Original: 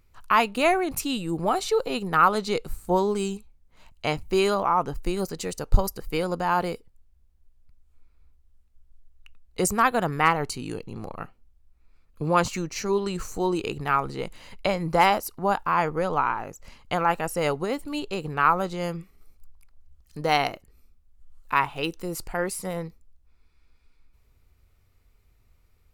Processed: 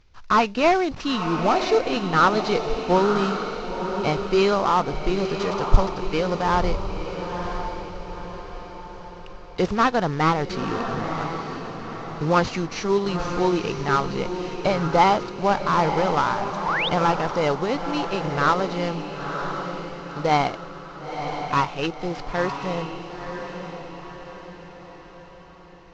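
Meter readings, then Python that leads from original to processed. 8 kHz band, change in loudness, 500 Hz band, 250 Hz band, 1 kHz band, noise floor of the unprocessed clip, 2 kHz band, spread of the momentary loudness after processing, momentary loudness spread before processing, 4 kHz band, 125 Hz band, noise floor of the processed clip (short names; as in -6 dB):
-5.0 dB, +2.0 dB, +4.0 dB, +4.5 dB, +3.0 dB, -62 dBFS, +1.5 dB, 16 LU, 12 LU, +3.5 dB, +5.0 dB, -43 dBFS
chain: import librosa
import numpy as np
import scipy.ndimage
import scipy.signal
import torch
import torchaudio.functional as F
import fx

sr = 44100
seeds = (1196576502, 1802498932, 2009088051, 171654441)

y = fx.cvsd(x, sr, bps=32000)
y = fx.echo_diffused(y, sr, ms=984, feedback_pct=48, wet_db=-7)
y = fx.spec_paint(y, sr, seeds[0], shape='rise', start_s=16.65, length_s=0.24, low_hz=820.0, high_hz=3900.0, level_db=-28.0)
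y = y * librosa.db_to_amplitude(3.5)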